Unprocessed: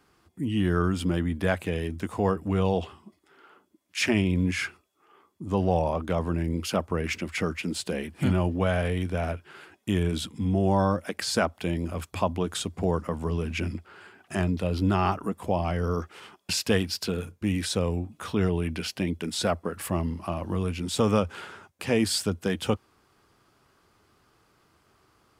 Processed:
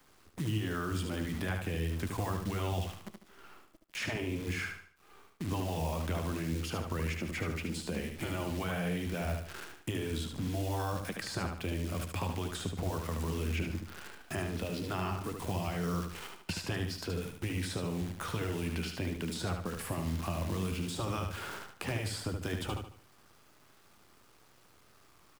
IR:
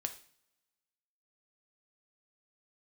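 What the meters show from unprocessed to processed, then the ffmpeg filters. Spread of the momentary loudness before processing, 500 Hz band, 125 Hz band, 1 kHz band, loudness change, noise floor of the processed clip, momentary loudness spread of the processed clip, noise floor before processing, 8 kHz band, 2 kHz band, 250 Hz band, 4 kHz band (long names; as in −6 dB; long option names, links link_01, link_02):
8 LU, −11.0 dB, −6.5 dB, −8.5 dB, −8.5 dB, −62 dBFS, 6 LU, −66 dBFS, −7.5 dB, −6.0 dB, −9.5 dB, −8.0 dB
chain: -filter_complex "[0:a]afftfilt=real='re*lt(hypot(re,im),0.355)':imag='im*lt(hypot(re,im),0.355)':win_size=1024:overlap=0.75,acrusher=bits=8:dc=4:mix=0:aa=0.000001,acrossover=split=160|1700[link_01][link_02][link_03];[link_01]acompressor=threshold=-38dB:ratio=4[link_04];[link_02]acompressor=threshold=-42dB:ratio=4[link_05];[link_03]acompressor=threshold=-47dB:ratio=4[link_06];[link_04][link_05][link_06]amix=inputs=3:normalize=0,asplit=2[link_07][link_08];[link_08]aecho=0:1:74|148|222|296:0.531|0.191|0.0688|0.0248[link_09];[link_07][link_09]amix=inputs=2:normalize=0,volume=2.5dB"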